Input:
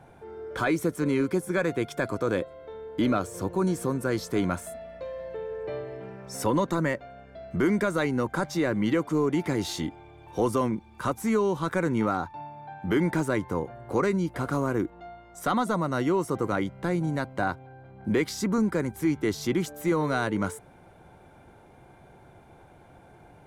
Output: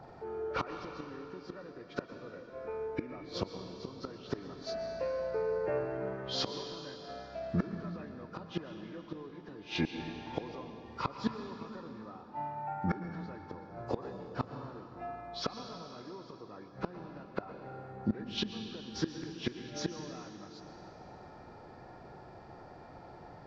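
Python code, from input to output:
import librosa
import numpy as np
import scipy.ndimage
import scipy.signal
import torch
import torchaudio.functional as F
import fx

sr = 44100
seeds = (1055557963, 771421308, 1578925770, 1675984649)

y = fx.freq_compress(x, sr, knee_hz=1100.0, ratio=1.5)
y = fx.low_shelf(y, sr, hz=190.0, db=-5.5)
y = fx.gate_flip(y, sr, shuts_db=-22.0, range_db=-24)
y = fx.rev_plate(y, sr, seeds[0], rt60_s=3.1, hf_ratio=0.9, predelay_ms=100, drr_db=6.0)
y = F.gain(torch.from_numpy(y), 2.5).numpy()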